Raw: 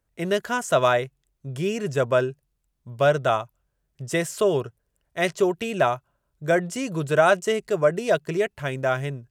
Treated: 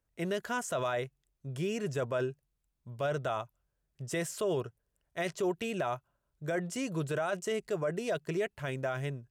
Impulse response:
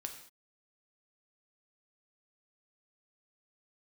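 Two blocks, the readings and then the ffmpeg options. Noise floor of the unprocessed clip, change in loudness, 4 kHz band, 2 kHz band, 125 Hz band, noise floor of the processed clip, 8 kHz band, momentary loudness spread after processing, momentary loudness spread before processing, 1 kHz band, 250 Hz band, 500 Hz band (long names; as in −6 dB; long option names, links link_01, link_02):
−75 dBFS, −11.0 dB, −10.0 dB, −11.5 dB, −8.0 dB, −82 dBFS, −7.0 dB, 10 LU, 13 LU, −12.5 dB, −8.0 dB, −11.5 dB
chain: -af "alimiter=limit=-17.5dB:level=0:latency=1:release=21,volume=-6.5dB"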